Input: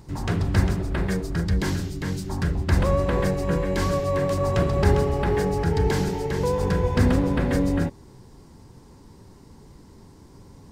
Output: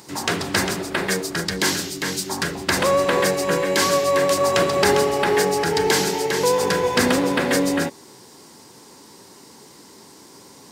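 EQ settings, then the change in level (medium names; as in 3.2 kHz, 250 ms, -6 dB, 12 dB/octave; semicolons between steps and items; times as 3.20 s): high-pass 290 Hz 12 dB/octave; treble shelf 2 kHz +10.5 dB; +5.5 dB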